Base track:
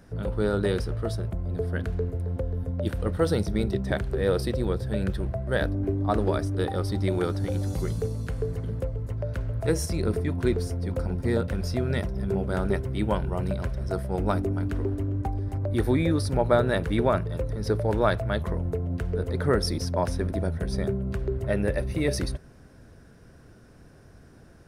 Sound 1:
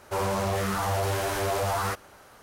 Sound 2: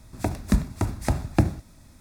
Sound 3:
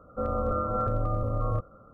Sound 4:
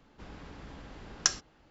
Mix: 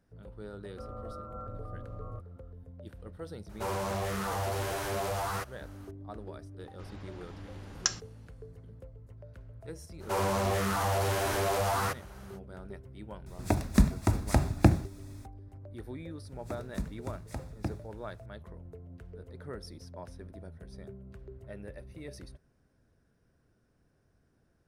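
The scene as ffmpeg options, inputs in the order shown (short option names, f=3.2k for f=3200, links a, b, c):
-filter_complex "[1:a]asplit=2[a][b];[2:a]asplit=2[c][d];[0:a]volume=-19dB[e];[3:a]atrim=end=1.93,asetpts=PTS-STARTPTS,volume=-15dB,afade=t=in:d=0.004:c=hsin,afade=t=out:st=1.926:d=0.004:c=hsin,adelay=600[f];[a]atrim=end=2.42,asetpts=PTS-STARTPTS,volume=-6dB,afade=t=in:d=0.004:c=hsin,afade=t=out:st=2.416:d=0.004:c=hsin,adelay=153909S[g];[4:a]atrim=end=1.7,asetpts=PTS-STARTPTS,volume=-2.5dB,afade=t=in:d=0.004:c=hsin,afade=t=out:st=1.696:d=0.004:c=hsin,adelay=6600[h];[b]atrim=end=2.42,asetpts=PTS-STARTPTS,volume=-2dB,afade=t=in:d=0.05,afade=t=out:st=2.37:d=0.05,adelay=9980[i];[c]atrim=end=2,asetpts=PTS-STARTPTS,volume=-1dB,afade=t=in:d=0.004:c=hsin,afade=t=out:st=1.996:d=0.004:c=hsin,adelay=13260[j];[d]atrim=end=2,asetpts=PTS-STARTPTS,volume=-15dB,afade=t=in:d=0.004:c=hsin,afade=t=out:st=1.996:d=0.004:c=hsin,adelay=16260[k];[e][f][g][h][i][j][k]amix=inputs=7:normalize=0"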